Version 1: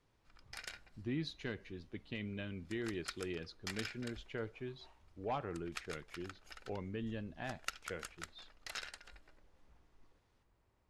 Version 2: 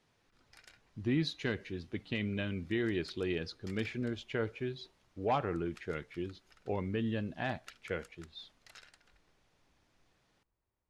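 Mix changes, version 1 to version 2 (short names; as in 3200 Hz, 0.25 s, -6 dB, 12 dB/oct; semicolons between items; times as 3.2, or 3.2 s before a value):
speech +7.5 dB; background -11.0 dB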